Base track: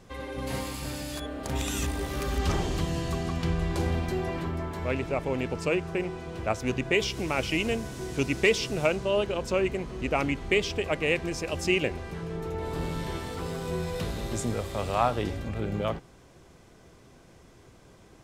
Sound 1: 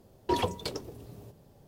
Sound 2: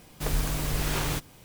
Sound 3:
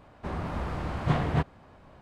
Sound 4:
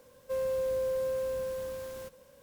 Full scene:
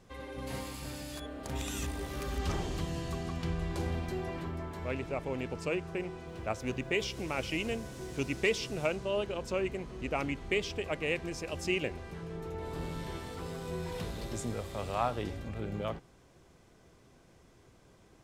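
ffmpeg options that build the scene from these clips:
-filter_complex "[0:a]volume=-6.5dB[a];[4:a]acompressor=threshold=-43dB:ratio=6:attack=3.2:release=140:knee=1:detection=peak[b];[1:a]asoftclip=type=tanh:threshold=-31dB[c];[b]atrim=end=2.42,asetpts=PTS-STARTPTS,volume=-12dB,afade=t=in:d=0.004:c=hsin,afade=t=out:st=2.416:d=0.004:c=hsin,adelay=6270[d];[c]atrim=end=1.67,asetpts=PTS-STARTPTS,volume=-13dB,afade=t=in:d=0.004:c=hsin,afade=t=out:st=1.666:d=0.004:c=hsin,adelay=13560[e];[a][d][e]amix=inputs=3:normalize=0"

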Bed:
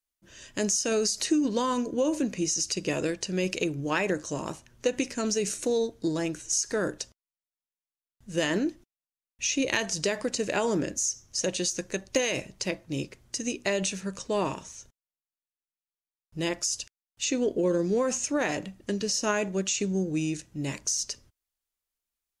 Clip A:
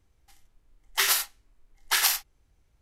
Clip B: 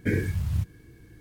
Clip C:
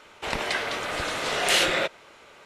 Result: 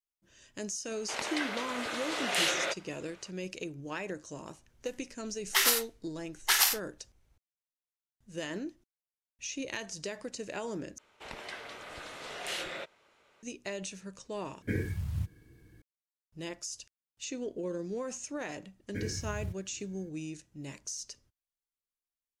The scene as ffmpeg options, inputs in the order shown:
-filter_complex "[3:a]asplit=2[a][b];[2:a]asplit=2[c][d];[0:a]volume=-11dB[e];[a]highpass=f=360:p=1[f];[e]asplit=3[g][h][i];[g]atrim=end=10.984[j];[b]atrim=end=2.45,asetpts=PTS-STARTPTS,volume=-15.5dB[k];[h]atrim=start=13.426:end=14.624[l];[c]atrim=end=1.2,asetpts=PTS-STARTPTS,volume=-7dB[m];[i]atrim=start=15.816[n];[f]atrim=end=2.45,asetpts=PTS-STARTPTS,volume=-7dB,afade=t=in:d=0.004:c=hsin,afade=t=out:st=2.446:d=0.004:c=hsin,adelay=860[o];[1:a]atrim=end=2.81,asetpts=PTS-STARTPTS,volume=-2dB,afade=t=in:d=0.004:c=hsin,afade=t=out:st=2.806:d=0.004:c=hsin,adelay=201537S[p];[d]atrim=end=1.2,asetpts=PTS-STARTPTS,volume=-11.5dB,afade=t=in:d=0.004:c=hsin,afade=t=out:st=1.196:d=0.004:c=hsin,adelay=18890[q];[j][k]acrossfade=d=0.004:c1=hsin:c2=hsin[r];[r][l]acrossfade=d=0.004:c1=hsin:c2=hsin[s];[s][m]acrossfade=d=0.004:c1=hsin:c2=hsin[t];[t][n]acrossfade=d=0.004:c1=hsin:c2=hsin[u];[u][o][p][q]amix=inputs=4:normalize=0"

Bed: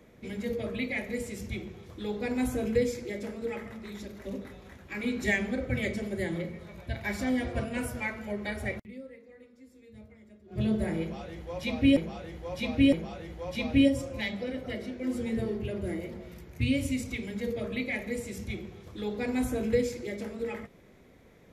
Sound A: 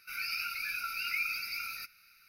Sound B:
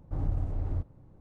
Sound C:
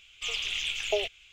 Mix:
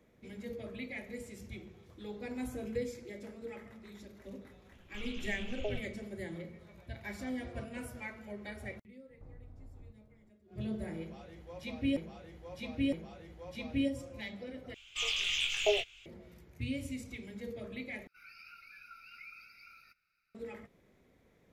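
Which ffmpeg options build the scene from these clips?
-filter_complex "[3:a]asplit=2[a][b];[0:a]volume=-10dB[c];[a]aemphasis=mode=reproduction:type=riaa[d];[2:a]acompressor=threshold=-37dB:ratio=6:attack=3.2:release=140:knee=1:detection=peak[e];[b]asplit=2[f][g];[g]adelay=22,volume=-2.5dB[h];[f][h]amix=inputs=2:normalize=0[i];[1:a]lowpass=f=1.3k:p=1[j];[c]asplit=3[k][l][m];[k]atrim=end=14.744[n];[i]atrim=end=1.32,asetpts=PTS-STARTPTS,volume=-3dB[o];[l]atrim=start=16.056:end=18.074[p];[j]atrim=end=2.28,asetpts=PTS-STARTPTS,volume=-11.5dB[q];[m]atrim=start=20.346[r];[d]atrim=end=1.32,asetpts=PTS-STARTPTS,volume=-12dB,afade=t=in:d=0.004:c=hsin,afade=t=out:st=1.316:d=0.004:c=hsin,adelay=4720[s];[e]atrim=end=1.2,asetpts=PTS-STARTPTS,volume=-11.5dB,afade=t=in:d=0.004:c=hsin,afade=t=out:st=1.196:d=0.004:c=hsin,adelay=9100[t];[n][o]acrossfade=d=0.004:c1=hsin:c2=hsin[u];[u][p]acrossfade=d=0.004:c1=hsin:c2=hsin[v];[v][q]acrossfade=d=0.004:c1=hsin:c2=hsin[w];[w][r]acrossfade=d=0.004:c1=hsin:c2=hsin[x];[x][s][t]amix=inputs=3:normalize=0"

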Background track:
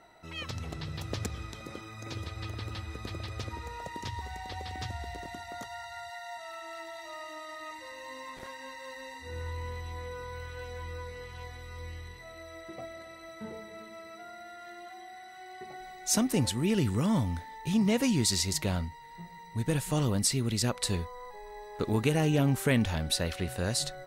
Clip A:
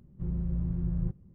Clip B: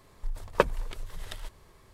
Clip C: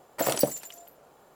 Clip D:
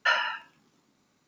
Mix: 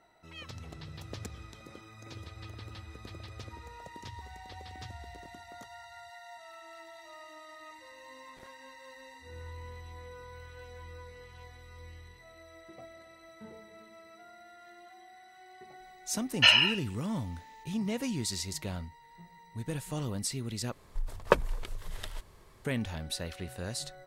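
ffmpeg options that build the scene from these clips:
-filter_complex "[0:a]volume=-7dB[a];[4:a]highshelf=f=2k:t=q:w=3:g=8.5[b];[a]asplit=2[c][d];[c]atrim=end=20.724[e];[2:a]atrim=end=1.93,asetpts=PTS-STARTPTS,volume=-0.5dB[f];[d]atrim=start=22.646[g];[b]atrim=end=1.27,asetpts=PTS-STARTPTS,volume=-2dB,afade=t=in:d=0.004:c=hsin,afade=t=out:st=1.266:d=0.004:c=hsin,adelay=16370[h];[e][f]acrossfade=d=0.004:c1=hsin:c2=hsin[i];[i][g]acrossfade=d=0.004:c1=hsin:c2=hsin[j];[j][h]amix=inputs=2:normalize=0"

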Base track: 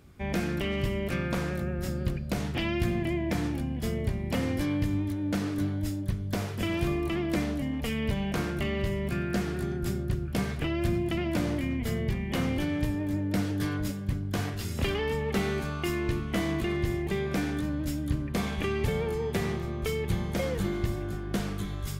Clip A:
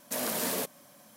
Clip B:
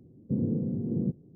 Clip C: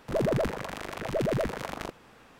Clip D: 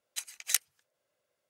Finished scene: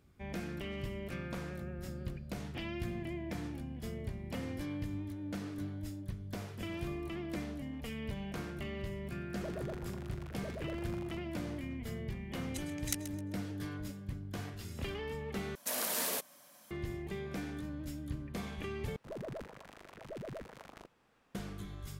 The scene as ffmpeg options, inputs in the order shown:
-filter_complex "[3:a]asplit=2[a][b];[0:a]volume=-11dB[c];[4:a]aecho=1:1:131|262|393:0.211|0.0634|0.019[d];[1:a]lowshelf=f=480:g=-10[e];[c]asplit=3[f][g][h];[f]atrim=end=15.554[i];[e]atrim=end=1.16,asetpts=PTS-STARTPTS,volume=-2dB[j];[g]atrim=start=16.706:end=18.964[k];[b]atrim=end=2.39,asetpts=PTS-STARTPTS,volume=-16.5dB[l];[h]atrim=start=21.346[m];[a]atrim=end=2.39,asetpts=PTS-STARTPTS,volume=-16.5dB,afade=t=in:d=0.004:c=hsin,afade=t=out:st=2.386:d=0.004:c=hsin,adelay=9290[n];[d]atrim=end=1.49,asetpts=PTS-STARTPTS,volume=-9.5dB,afade=t=in:d=0.004:c=hsin,afade=t=out:st=1.486:d=0.004:c=hsin,adelay=12380[o];[i][j]acrossfade=d=0.004:c1=hsin:c2=hsin[p];[p][k]acrossfade=d=0.004:c1=hsin:c2=hsin[q];[q][l]acrossfade=d=0.004:c1=hsin:c2=hsin[r];[r][m]acrossfade=d=0.004:c1=hsin:c2=hsin[s];[s][n][o]amix=inputs=3:normalize=0"

